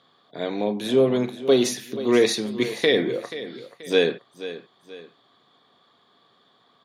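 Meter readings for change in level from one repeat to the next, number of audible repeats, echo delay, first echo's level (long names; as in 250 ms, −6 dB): −8.0 dB, 2, 482 ms, −14.0 dB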